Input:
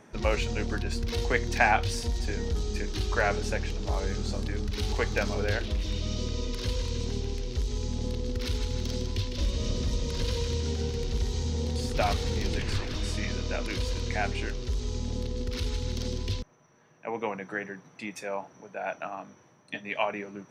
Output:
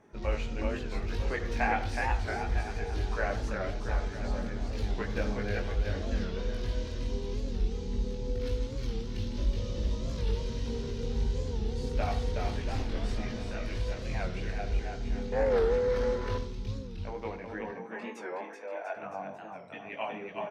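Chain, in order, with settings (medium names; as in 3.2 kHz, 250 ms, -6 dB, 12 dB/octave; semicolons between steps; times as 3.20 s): treble shelf 2.9 kHz -9.5 dB; bouncing-ball echo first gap 370 ms, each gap 0.85×, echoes 5; chorus voices 4, 0.2 Hz, delay 20 ms, depth 2.5 ms; 15.32–16.38 s: high-order bell 940 Hz +15 dB 2.5 oct; 17.71–18.95 s: high-pass 130 Hz -> 400 Hz 24 dB/octave; on a send at -11 dB: reverberation, pre-delay 46 ms; on the sum: warped record 45 rpm, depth 160 cents; trim -2.5 dB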